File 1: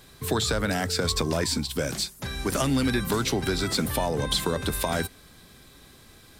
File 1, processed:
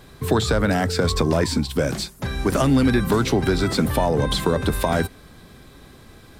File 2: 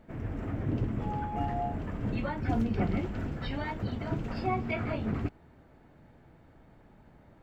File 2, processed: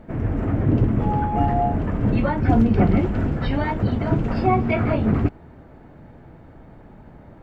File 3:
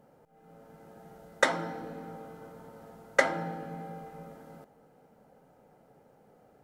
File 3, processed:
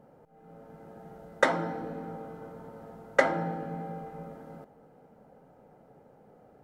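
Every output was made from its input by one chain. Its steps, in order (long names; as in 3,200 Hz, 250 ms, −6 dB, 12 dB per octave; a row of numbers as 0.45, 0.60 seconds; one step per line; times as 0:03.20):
high-shelf EQ 2,300 Hz −10 dB
in parallel at −6.5 dB: soft clipping −19 dBFS
on the sum: normalise the peak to −6 dBFS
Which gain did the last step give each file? +4.5, +9.5, +1.0 decibels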